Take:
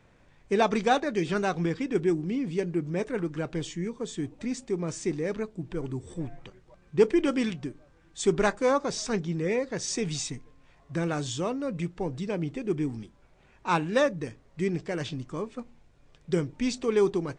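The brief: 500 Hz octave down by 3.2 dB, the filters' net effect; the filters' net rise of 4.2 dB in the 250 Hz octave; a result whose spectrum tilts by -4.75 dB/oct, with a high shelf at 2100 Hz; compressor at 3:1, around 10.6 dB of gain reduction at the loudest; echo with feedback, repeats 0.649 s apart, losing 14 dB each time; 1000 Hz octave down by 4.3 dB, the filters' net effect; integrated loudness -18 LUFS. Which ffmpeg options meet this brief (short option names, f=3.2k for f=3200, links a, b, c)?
-af "equalizer=f=250:t=o:g=8,equalizer=f=500:t=o:g=-7,equalizer=f=1k:t=o:g=-5,highshelf=f=2.1k:g=6,acompressor=threshold=-32dB:ratio=3,aecho=1:1:649|1298:0.2|0.0399,volume=16.5dB"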